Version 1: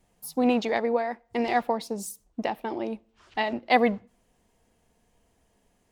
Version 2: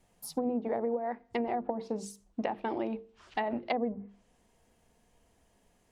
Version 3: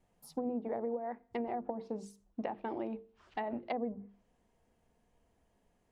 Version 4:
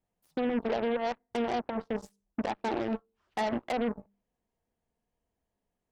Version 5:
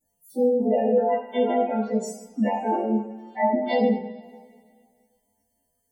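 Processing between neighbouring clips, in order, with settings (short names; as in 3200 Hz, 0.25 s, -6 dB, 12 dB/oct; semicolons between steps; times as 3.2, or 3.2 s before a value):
treble ducked by the level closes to 530 Hz, closed at -20.5 dBFS; notches 50/100/150/200/250/300/350/400/450 Hz; compressor 5:1, threshold -28 dBFS, peak gain reduction 9 dB
high shelf 2600 Hz -8.5 dB; gain -4.5 dB
limiter -30.5 dBFS, peak gain reduction 8 dB; added harmonics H 7 -16 dB, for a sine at -30 dBFS; gain +8.5 dB
frequency quantiser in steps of 2 st; spectral gate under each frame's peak -10 dB strong; two-slope reverb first 0.54 s, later 2.1 s, from -19 dB, DRR -9.5 dB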